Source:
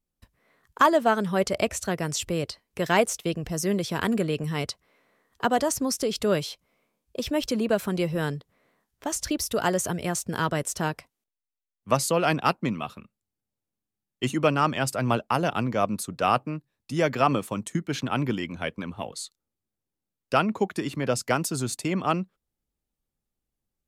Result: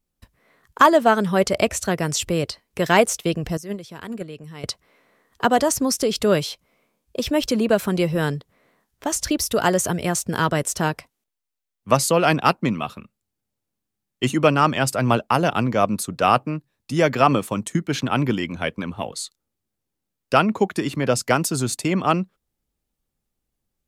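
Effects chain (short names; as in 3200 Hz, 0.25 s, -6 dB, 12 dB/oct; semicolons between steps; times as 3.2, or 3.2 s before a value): 3.57–4.64 gate -21 dBFS, range -15 dB; gain +5.5 dB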